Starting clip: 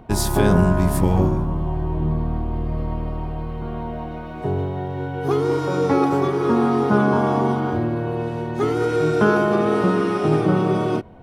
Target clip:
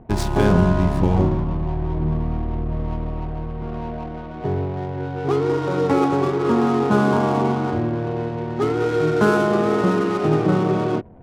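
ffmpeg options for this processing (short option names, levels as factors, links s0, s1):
-af "adynamicsmooth=sensitivity=4.5:basefreq=550"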